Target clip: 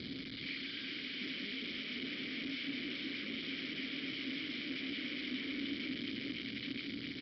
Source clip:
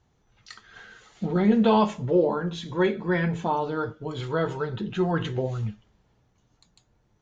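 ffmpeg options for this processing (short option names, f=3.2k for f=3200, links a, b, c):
-filter_complex "[0:a]aeval=exprs='val(0)+0.5*0.0282*sgn(val(0))':c=same,aexciter=amount=9.9:drive=1:freq=3.9k,aeval=exprs='(tanh(28.2*val(0)+0.25)-tanh(0.25))/28.2':c=same,bandreject=f=50:t=h:w=6,bandreject=f=100:t=h:w=6,bandreject=f=150:t=h:w=6,bandreject=f=200:t=h:w=6,bandreject=f=250:t=h:w=6,bandreject=f=300:t=h:w=6,aecho=1:1:409|818|1227|1636|2045|2454|2863:0.562|0.309|0.17|0.0936|0.0515|0.0283|0.0156,aresample=11025,aeval=exprs='(mod(28.2*val(0)+1,2)-1)/28.2':c=same,aresample=44100,acompressor=threshold=-38dB:ratio=6,asplit=3[a][b][c];[a]bandpass=f=270:t=q:w=8,volume=0dB[d];[b]bandpass=f=2.29k:t=q:w=8,volume=-6dB[e];[c]bandpass=f=3.01k:t=q:w=8,volume=-9dB[f];[d][e][f]amix=inputs=3:normalize=0,volume=12.5dB"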